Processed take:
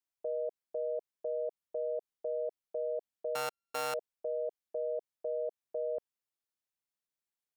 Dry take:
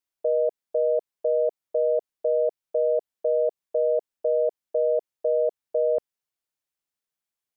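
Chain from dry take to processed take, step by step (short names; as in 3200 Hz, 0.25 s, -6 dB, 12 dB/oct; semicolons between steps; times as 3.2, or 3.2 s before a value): 3.35–3.94 sample sorter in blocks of 32 samples; limiter -22 dBFS, peak gain reduction 6 dB; gain -6.5 dB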